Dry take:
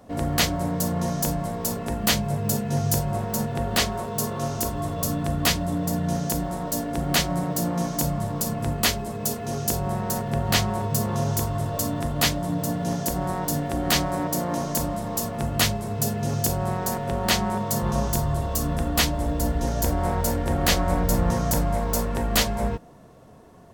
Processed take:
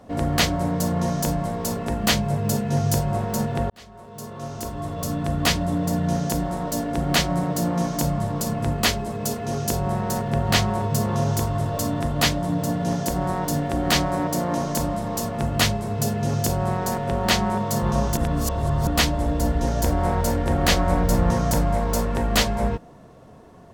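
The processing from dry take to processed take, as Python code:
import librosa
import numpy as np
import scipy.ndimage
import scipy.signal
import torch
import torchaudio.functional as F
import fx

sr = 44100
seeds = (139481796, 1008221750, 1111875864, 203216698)

y = fx.edit(x, sr, fx.fade_in_span(start_s=3.7, length_s=1.87),
    fx.reverse_span(start_s=18.17, length_s=0.7), tone=tone)
y = fx.high_shelf(y, sr, hz=9100.0, db=-9.0)
y = y * librosa.db_to_amplitude(2.5)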